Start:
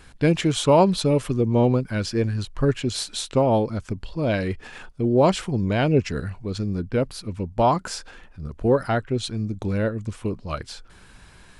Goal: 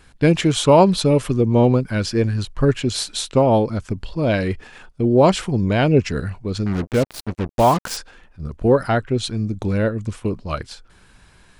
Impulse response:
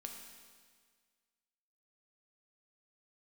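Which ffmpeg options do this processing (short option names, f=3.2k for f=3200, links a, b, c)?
-filter_complex "[0:a]agate=range=-6dB:threshold=-36dB:ratio=16:detection=peak,asettb=1/sr,asplit=3[a][b][c];[a]atrim=end=6.664[d];[b]atrim=start=6.66:end=7.97,asetpts=PTS-STARTPTS,afade=t=in:d=0.004:c=qsin,afade=t=out:st=1.306:d=0.004:c=qsin,acrusher=bits=4:mix=0:aa=0.5[e];[c]atrim=start=7.966[f];[d][e]acrossfade=d=0.004:c1=hsin:c2=qsin[g];[g][f]acrossfade=d=0.004:c1=qsin:c2=hsin,volume=4dB"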